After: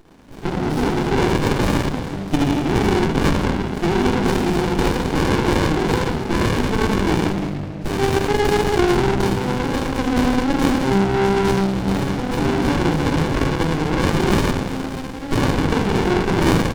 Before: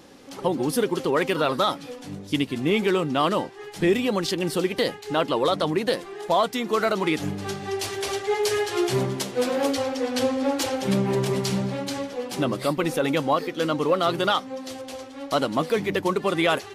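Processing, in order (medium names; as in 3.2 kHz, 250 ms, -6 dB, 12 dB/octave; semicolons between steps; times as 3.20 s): 7.38–7.85 s: inverted gate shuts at -24 dBFS, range -31 dB; 9.27–9.83 s: feedback comb 280 Hz, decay 1 s, mix 50%; on a send: early reflections 20 ms -8 dB, 56 ms -6 dB; on the sum: level rider gain up to 11.5 dB; low-pass 4.1 kHz 12 dB/octave; bass shelf 230 Hz +9 dB; simulated room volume 1100 m³, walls mixed, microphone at 3.5 m; in parallel at +2.5 dB: peak limiter -2 dBFS, peak gain reduction 13 dB; on the sum: saturation -2 dBFS, distortion -9 dB; tilt EQ +4 dB/octave; sliding maximum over 65 samples; trim -8.5 dB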